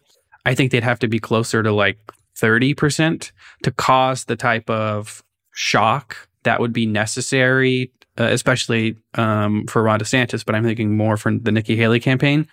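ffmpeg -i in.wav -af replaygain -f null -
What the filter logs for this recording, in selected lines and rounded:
track_gain = -0.8 dB
track_peak = 0.613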